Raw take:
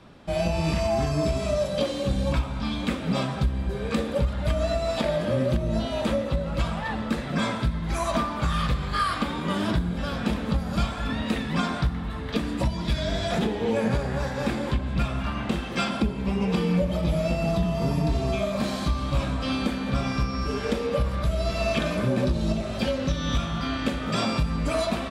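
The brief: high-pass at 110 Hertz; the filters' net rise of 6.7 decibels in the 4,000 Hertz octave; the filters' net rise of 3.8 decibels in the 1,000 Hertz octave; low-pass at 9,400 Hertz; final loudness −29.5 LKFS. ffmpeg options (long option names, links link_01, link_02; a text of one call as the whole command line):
ffmpeg -i in.wav -af "highpass=110,lowpass=9400,equalizer=frequency=1000:width_type=o:gain=4.5,equalizer=frequency=4000:width_type=o:gain=8,volume=-4dB" out.wav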